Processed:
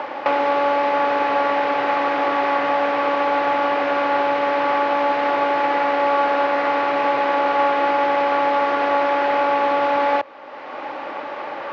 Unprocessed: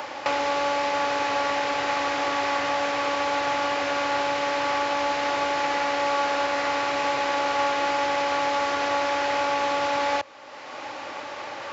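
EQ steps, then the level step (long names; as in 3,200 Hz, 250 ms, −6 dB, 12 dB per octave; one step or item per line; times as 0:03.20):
high-pass filter 200 Hz 12 dB per octave
low-pass filter 1,800 Hz 6 dB per octave
high-frequency loss of the air 180 metres
+8.0 dB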